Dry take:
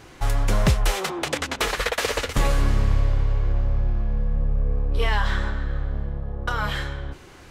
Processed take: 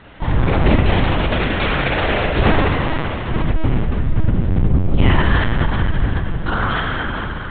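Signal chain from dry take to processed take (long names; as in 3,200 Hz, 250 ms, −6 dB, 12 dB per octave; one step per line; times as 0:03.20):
0:02.61–0:03.29: high-pass filter 730 Hz 24 dB per octave
on a send: feedback delay with all-pass diffusion 471 ms, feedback 58%, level −9.5 dB
on the sum: random phases in short frames
spring reverb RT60 2.2 s, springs 35 ms, chirp 65 ms, DRR −3 dB
linear-prediction vocoder at 8 kHz pitch kept
level +2.5 dB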